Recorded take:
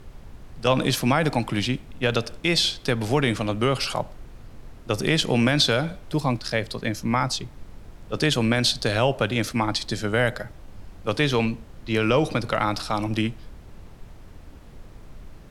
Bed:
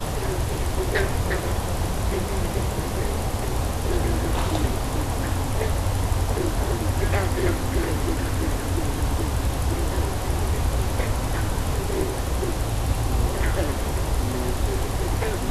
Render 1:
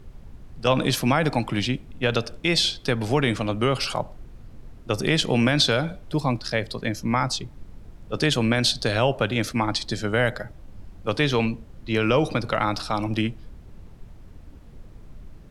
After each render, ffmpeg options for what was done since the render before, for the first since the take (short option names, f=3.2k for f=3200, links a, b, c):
-af "afftdn=nr=6:nf=-45"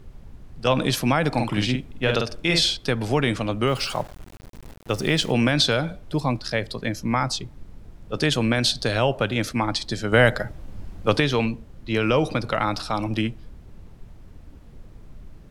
-filter_complex "[0:a]asettb=1/sr,asplit=3[a][b][c];[a]atrim=end=1.304[d];[b]atrim=start=1.3:end=2.77,asetpts=PTS-STARTPTS,afade=t=in:d=0.004:c=qsin,afade=t=out:st=1.466:d=0.004:c=qsin,asplit=2[e][f];[f]adelay=48,volume=-4dB[g];[e][g]amix=inputs=2:normalize=0,atrim=end_sample=64827[h];[c]atrim=start=2.766[i];[d][h]acrossfade=d=0.004:c1=hsin:c2=qsin[j];[j][i]acrossfade=d=0.004:c1=qsin:c2=hsin,asettb=1/sr,asplit=3[k][l][m];[k]atrim=end=3.674[n];[l]atrim=start=3.67:end=5.32,asetpts=PTS-STARTPTS,afade=t=in:d=0.004:c=qsin,afade=t=out:st=1.646:d=0.004:c=qsin,aeval=exprs='val(0)*gte(abs(val(0)),0.0119)':c=same[o];[m]atrim=start=5.316[p];[n][o]acrossfade=d=0.004:c1=hsin:c2=qsin[q];[q][p]acrossfade=d=0.004:c1=qsin:c2=hsin,asplit=3[r][s][t];[r]atrim=end=10.122[u];[s]atrim=start=10.118:end=11.202,asetpts=PTS-STARTPTS,volume=5.5dB[v];[t]atrim=start=11.198[w];[u][v]acrossfade=d=0.004:c1=hsin:c2=hsin[x];[x][w]acrossfade=d=0.004:c1=hsin:c2=hsin"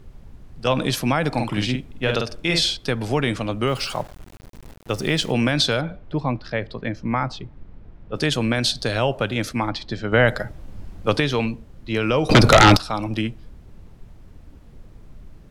-filter_complex "[0:a]asettb=1/sr,asplit=3[a][b][c];[a]atrim=end=5.814[d];[b]atrim=start=5.81:end=8.16,asetpts=PTS-STARTPTS,afade=t=in:d=0.004:c=qsin,afade=t=out:st=2.346:d=0.004:c=qsin,lowpass=2.7k[e];[c]atrim=start=8.156[f];[d][e]acrossfade=d=0.004:c1=hsin:c2=qsin[g];[g][f]acrossfade=d=0.004:c1=qsin:c2=hsin,asplit=3[h][i][j];[h]afade=t=out:st=9.69:d=0.02[k];[i]lowpass=3.5k,afade=t=in:st=9.69:d=0.02,afade=t=out:st=10.27:d=0.02[l];[j]afade=t=in:st=10.27:d=0.02[m];[k][l][m]amix=inputs=3:normalize=0,asettb=1/sr,asplit=3[n][o][p];[n]atrim=end=12.294[q];[o]atrim=start=12.29:end=12.77,asetpts=PTS-STARTPTS,afade=t=in:d=0.004:c=qsin,afade=t=out:st=0.476:d=0.004:c=qsin,aeval=exprs='0.531*sin(PI/2*5.01*val(0)/0.531)':c=same[r];[p]atrim=start=12.766[s];[q][r]acrossfade=d=0.004:c1=hsin:c2=qsin[t];[t][s]acrossfade=d=0.004:c1=qsin:c2=hsin"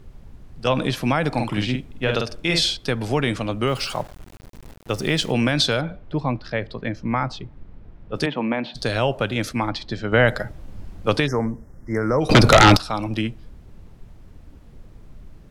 -filter_complex "[0:a]asettb=1/sr,asplit=3[a][b][c];[a]atrim=end=0.694[d];[b]atrim=start=0.69:end=2.16,asetpts=PTS-STARTPTS,afade=t=in:d=0.004:c=qsin,afade=t=out:st=1.466:d=0.004:c=qsin,acrossover=split=3700[e][f];[f]acompressor=threshold=-37dB:ratio=4:attack=1:release=60[g];[e][g]amix=inputs=2:normalize=0[h];[c]atrim=start=2.156[i];[d][h]acrossfade=d=0.004:c1=hsin:c2=qsin[j];[j][i]acrossfade=d=0.004:c1=qsin:c2=hsin,asplit=3[k][l][m];[k]afade=t=out:st=8.25:d=0.02[n];[l]highpass=f=180:w=0.5412,highpass=f=180:w=1.3066,equalizer=f=400:t=q:w=4:g=-5,equalizer=f=910:t=q:w=4:g=7,equalizer=f=1.5k:t=q:w=4:g=-8,lowpass=f=2.4k:w=0.5412,lowpass=f=2.4k:w=1.3066,afade=t=in:st=8.25:d=0.02,afade=t=out:st=8.74:d=0.02[o];[m]afade=t=in:st=8.74:d=0.02[p];[n][o][p]amix=inputs=3:normalize=0,asplit=3[q][r][s];[q]afade=t=out:st=11.26:d=0.02[t];[r]asuperstop=centerf=3300:order=20:qfactor=1.1,afade=t=in:st=11.26:d=0.02,afade=t=out:st=12.2:d=0.02[u];[s]afade=t=in:st=12.2:d=0.02[v];[t][u][v]amix=inputs=3:normalize=0"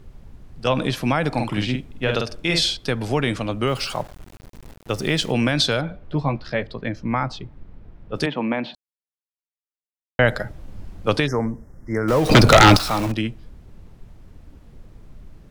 -filter_complex "[0:a]asettb=1/sr,asplit=3[a][b][c];[a]atrim=end=6.004[d];[b]atrim=start=6:end=6.63,asetpts=PTS-STARTPTS,afade=t=in:d=0.004:c=qsin,afade=t=out:st=0.626:d=0.004:c=qsin,asplit=2[e][f];[f]adelay=14,volume=-5.5dB[g];[e][g]amix=inputs=2:normalize=0,atrim=end_sample=27783[h];[c]atrim=start=6.626[i];[d][h]acrossfade=d=0.004:c1=hsin:c2=qsin[j];[j][i]acrossfade=d=0.004:c1=qsin:c2=hsin,asettb=1/sr,asplit=3[k][l][m];[k]atrim=end=12.084[n];[l]atrim=start=12.08:end=13.12,asetpts=PTS-STARTPTS,afade=t=in:d=0.004:c=qsin,afade=t=out:st=1.036:d=0.004:c=qsin,aeval=exprs='val(0)+0.5*0.0668*sgn(val(0))':c=same[o];[m]atrim=start=13.116[p];[n][o]acrossfade=d=0.004:c1=hsin:c2=qsin[q];[q][p]acrossfade=d=0.004:c1=qsin:c2=hsin,asplit=3[r][s][t];[r]atrim=end=8.75,asetpts=PTS-STARTPTS,afade=t=out:st=8.746:d=0.004:c=hsin[u];[s]atrim=start=8.75:end=10.19,asetpts=PTS-STARTPTS,volume=0[v];[t]atrim=start=10.19,asetpts=PTS-STARTPTS,afade=t=in:d=0.004:c=hsin[w];[u][v][w]concat=n=3:v=0:a=1"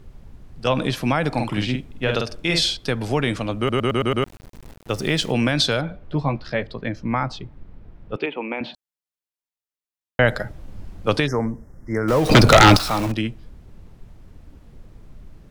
-filter_complex "[0:a]asettb=1/sr,asplit=3[a][b][c];[a]atrim=end=8.164[d];[b]atrim=start=8.16:end=8.61,asetpts=PTS-STARTPTS,afade=t=in:d=0.004:c=qsin,afade=t=out:st=0.446:d=0.004:c=qsin,highpass=390,equalizer=f=400:t=q:w=4:g=6,equalizer=f=630:t=q:w=4:g=-7,equalizer=f=1.1k:t=q:w=4:g=-5,equalizer=f=1.7k:t=q:w=4:g=-9,equalizer=f=2.5k:t=q:w=4:g=6,lowpass=f=2.8k:w=0.5412,lowpass=f=2.8k:w=1.3066[e];[c]atrim=start=8.606[f];[d][e]acrossfade=d=0.004:c1=hsin:c2=qsin[g];[g][f]acrossfade=d=0.004:c1=qsin:c2=hsin,asplit=7[h][i][j][k][l][m][n];[h]atrim=end=3.692[o];[i]atrim=start=3.578:end=3.692[p];[j]atrim=start=3.578:end=3.692[q];[k]atrim=start=3.578:end=3.692[r];[l]atrim=start=3.578:end=3.692[s];[m]atrim=start=3.578:end=3.692[t];[n]atrim=start=4.238[u];[o][p]acrossfade=d=0.004:c1=hsin:c2=hsin[v];[v][q]acrossfade=d=0.004:c1=hsin:c2=hsin[w];[w][r]acrossfade=d=0.004:c1=hsin:c2=hsin[x];[x][s]acrossfade=d=0.004:c1=hsin:c2=hsin[y];[y][t]acrossfade=d=0.004:c1=hsin:c2=hsin[z];[z][u]acrossfade=d=0.004:c1=hsin:c2=hsin"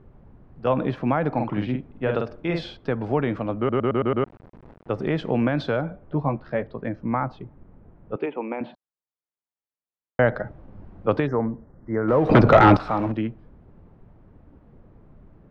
-af "lowpass=1.3k,lowshelf=f=74:g=-12"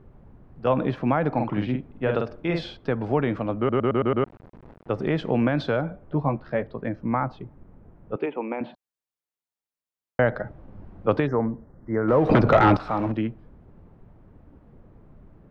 -af "alimiter=limit=-7.5dB:level=0:latency=1:release=428"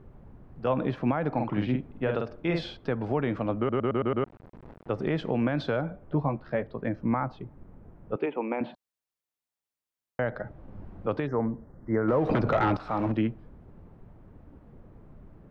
-af "alimiter=limit=-16dB:level=0:latency=1:release=497"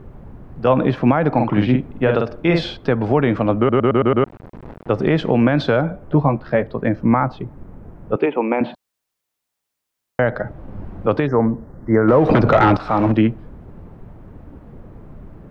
-af "volume=11.5dB"